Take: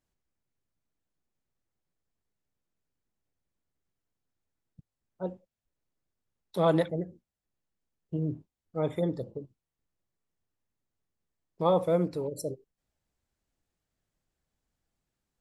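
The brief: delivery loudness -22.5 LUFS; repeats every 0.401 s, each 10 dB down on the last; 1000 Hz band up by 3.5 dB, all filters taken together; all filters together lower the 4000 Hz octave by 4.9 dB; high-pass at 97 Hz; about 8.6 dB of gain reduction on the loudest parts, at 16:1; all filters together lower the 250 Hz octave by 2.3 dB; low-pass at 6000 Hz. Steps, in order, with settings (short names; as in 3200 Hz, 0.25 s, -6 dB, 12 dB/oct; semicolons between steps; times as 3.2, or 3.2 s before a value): HPF 97 Hz; LPF 6000 Hz; bell 250 Hz -4 dB; bell 1000 Hz +5 dB; bell 4000 Hz -5.5 dB; compressor 16:1, threshold -26 dBFS; feedback echo 0.401 s, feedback 32%, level -10 dB; gain +13.5 dB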